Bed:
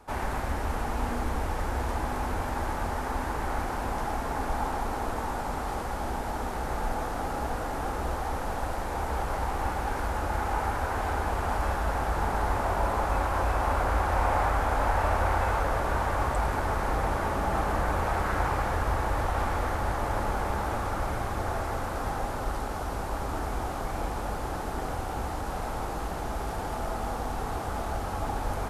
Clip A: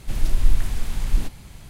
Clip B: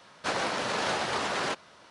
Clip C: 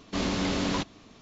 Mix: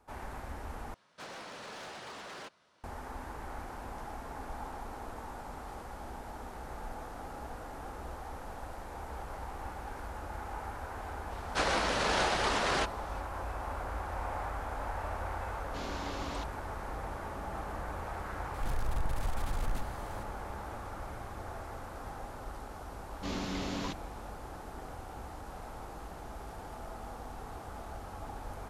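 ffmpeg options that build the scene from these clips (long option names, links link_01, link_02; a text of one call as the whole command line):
ffmpeg -i bed.wav -i cue0.wav -i cue1.wav -i cue2.wav -filter_complex "[2:a]asplit=2[link_01][link_02];[3:a]asplit=2[link_03][link_04];[0:a]volume=-12dB[link_05];[link_01]asoftclip=type=hard:threshold=-27.5dB[link_06];[link_03]highpass=260[link_07];[1:a]asoftclip=type=tanh:threshold=-21.5dB[link_08];[link_05]asplit=2[link_09][link_10];[link_09]atrim=end=0.944[link_11];[link_06]atrim=end=1.9,asetpts=PTS-STARTPTS,volume=-14dB[link_12];[link_10]atrim=start=2.836[link_13];[link_02]atrim=end=1.9,asetpts=PTS-STARTPTS,volume=-0.5dB,afade=type=in:duration=0.004:curve=hsin,afade=type=out:start_time=1.896:duration=0.004:curve=hsin,adelay=11310[link_14];[link_07]atrim=end=1.21,asetpts=PTS-STARTPTS,volume=-12.5dB,afade=type=in:duration=0.004:curve=hsin,afade=type=out:start_time=1.206:duration=0.004:curve=hsin,adelay=15610[link_15];[link_08]atrim=end=1.69,asetpts=PTS-STARTPTS,volume=-6dB,afade=type=in:duration=0.004:curve=hsin,afade=type=out:start_time=1.686:duration=0.004:curve=hsin,adelay=18540[link_16];[link_04]atrim=end=1.21,asetpts=PTS-STARTPTS,volume=-9dB,afade=type=in:duration=0.004:curve=hsin,afade=type=out:start_time=1.206:duration=0.004:curve=hsin,adelay=23100[link_17];[link_11][link_12]acrossfade=duration=0.004:curve1=hsin:curve2=hsin[link_18];[link_18][link_13]acrossfade=duration=0.004:curve1=hsin:curve2=hsin[link_19];[link_19][link_14][link_15][link_16][link_17]amix=inputs=5:normalize=0" out.wav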